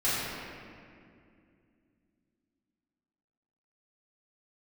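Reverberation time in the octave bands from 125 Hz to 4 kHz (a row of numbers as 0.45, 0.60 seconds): 3.2, 3.7, 2.7, 2.1, 2.1, 1.5 seconds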